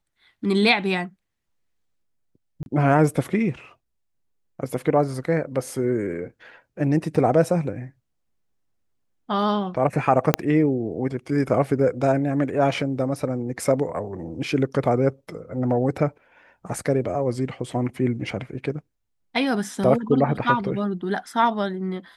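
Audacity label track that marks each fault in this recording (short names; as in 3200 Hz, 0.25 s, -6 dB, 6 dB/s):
2.630000	2.660000	gap 31 ms
10.340000	10.340000	pop -2 dBFS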